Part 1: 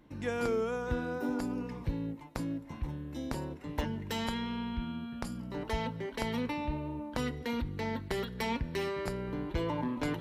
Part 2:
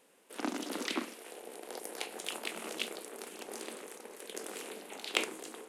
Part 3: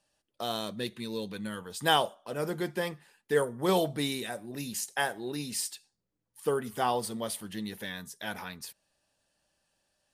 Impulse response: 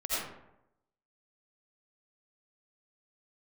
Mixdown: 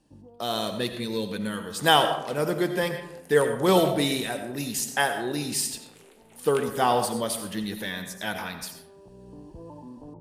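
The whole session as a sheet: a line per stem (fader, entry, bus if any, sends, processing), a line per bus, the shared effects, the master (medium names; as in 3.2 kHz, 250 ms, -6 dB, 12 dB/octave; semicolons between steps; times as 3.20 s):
-6.5 dB, 0.00 s, no send, steep low-pass 1 kHz 48 dB/octave; peak limiter -28.5 dBFS, peak gain reduction 9 dB; auto duck -13 dB, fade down 0.25 s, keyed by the third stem
-11.0 dB, 1.40 s, no send, none
+0.5 dB, 0.00 s, send -12.5 dB, level rider gain up to 4 dB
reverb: on, RT60 0.85 s, pre-delay 45 ms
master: none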